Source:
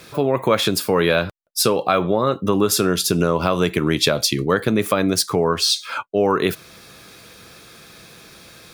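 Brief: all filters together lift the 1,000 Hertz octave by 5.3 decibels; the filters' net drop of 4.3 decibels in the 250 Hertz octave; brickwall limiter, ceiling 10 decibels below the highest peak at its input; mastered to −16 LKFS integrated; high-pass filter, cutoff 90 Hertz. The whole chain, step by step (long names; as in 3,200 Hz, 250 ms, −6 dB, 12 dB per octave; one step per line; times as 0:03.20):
high-pass filter 90 Hz
parametric band 250 Hz −6.5 dB
parametric band 1,000 Hz +7 dB
level +6 dB
brickwall limiter −4.5 dBFS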